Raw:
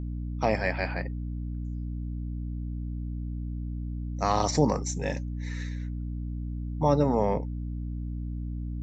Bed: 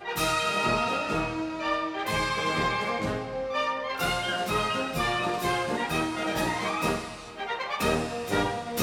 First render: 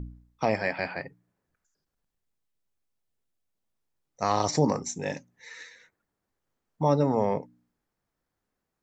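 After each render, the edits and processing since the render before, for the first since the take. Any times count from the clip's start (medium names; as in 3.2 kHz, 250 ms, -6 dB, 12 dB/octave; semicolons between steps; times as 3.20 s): de-hum 60 Hz, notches 5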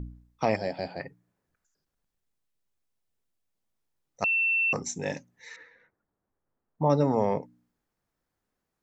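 0.56–1.00 s: high-order bell 1.6 kHz -13.5 dB; 4.24–4.73 s: bleep 2.69 kHz -22 dBFS; 5.56–6.90 s: low-pass 1.4 kHz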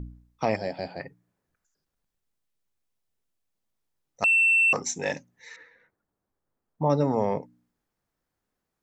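4.23–5.13 s: overdrive pedal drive 12 dB, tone 5.9 kHz, clips at -12 dBFS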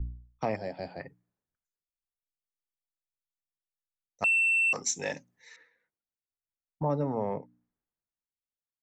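compression 2:1, threshold -35 dBFS, peak gain reduction 10 dB; three bands expanded up and down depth 70%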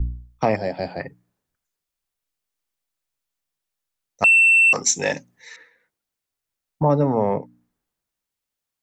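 trim +11 dB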